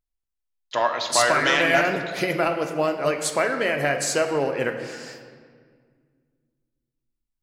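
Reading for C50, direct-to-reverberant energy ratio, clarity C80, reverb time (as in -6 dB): 7.5 dB, 5.0 dB, 9.0 dB, 1.9 s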